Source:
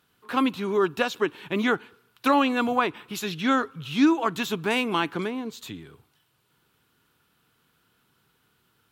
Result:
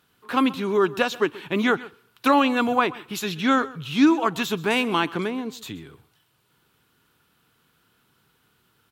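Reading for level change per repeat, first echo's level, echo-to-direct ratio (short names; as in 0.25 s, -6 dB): no steady repeat, -19.5 dB, -19.5 dB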